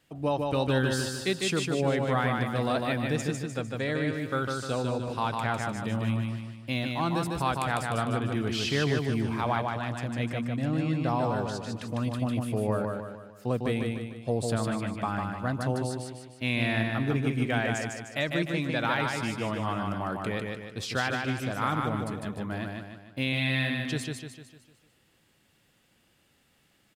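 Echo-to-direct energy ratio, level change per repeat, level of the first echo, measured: −2.5 dB, −6.5 dB, −3.5 dB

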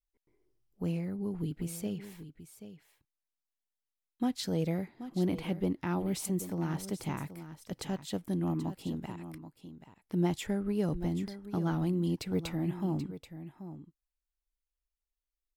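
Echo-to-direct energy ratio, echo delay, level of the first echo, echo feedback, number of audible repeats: −12.5 dB, 782 ms, −12.5 dB, repeats not evenly spaced, 1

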